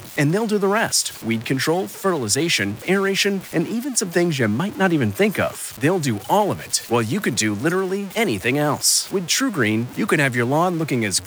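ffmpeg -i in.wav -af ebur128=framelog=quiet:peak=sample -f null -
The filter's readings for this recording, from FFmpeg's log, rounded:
Integrated loudness:
  I:         -19.9 LUFS
  Threshold: -29.9 LUFS
Loudness range:
  LRA:         1.4 LU
  Threshold: -40.1 LUFS
  LRA low:   -20.7 LUFS
  LRA high:  -19.3 LUFS
Sample peak:
  Peak:       -4.8 dBFS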